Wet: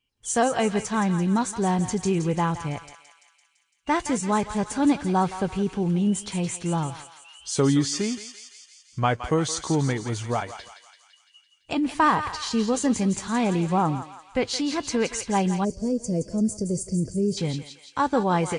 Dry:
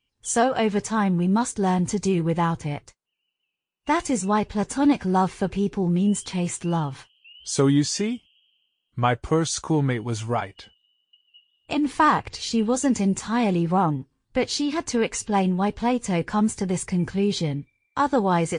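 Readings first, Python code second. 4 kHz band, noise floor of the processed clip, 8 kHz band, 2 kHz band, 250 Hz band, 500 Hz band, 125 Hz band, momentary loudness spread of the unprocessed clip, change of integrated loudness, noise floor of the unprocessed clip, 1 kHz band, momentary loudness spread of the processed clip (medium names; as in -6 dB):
-1.0 dB, -63 dBFS, -0.5 dB, -1.0 dB, -1.5 dB, -1.5 dB, -1.5 dB, 8 LU, -1.5 dB, -79 dBFS, -1.5 dB, 10 LU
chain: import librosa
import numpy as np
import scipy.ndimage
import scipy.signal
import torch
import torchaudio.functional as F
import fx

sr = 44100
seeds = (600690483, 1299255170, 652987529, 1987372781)

y = fx.echo_thinned(x, sr, ms=169, feedback_pct=66, hz=1200.0, wet_db=-8.0)
y = fx.spec_box(y, sr, start_s=15.64, length_s=1.74, low_hz=670.0, high_hz=4400.0, gain_db=-24)
y = y * 10.0 ** (-1.5 / 20.0)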